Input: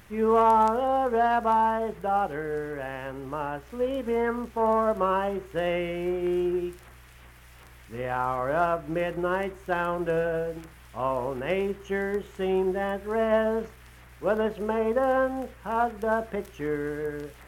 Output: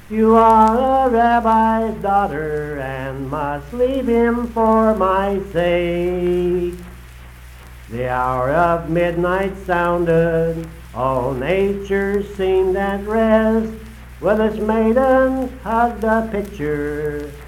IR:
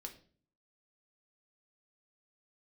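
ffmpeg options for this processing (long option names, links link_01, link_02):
-filter_complex "[0:a]asplit=2[link_01][link_02];[1:a]atrim=start_sample=2205,asetrate=29988,aresample=44100,lowshelf=frequency=310:gain=9.5[link_03];[link_02][link_03]afir=irnorm=-1:irlink=0,volume=-3.5dB[link_04];[link_01][link_04]amix=inputs=2:normalize=0,volume=5.5dB"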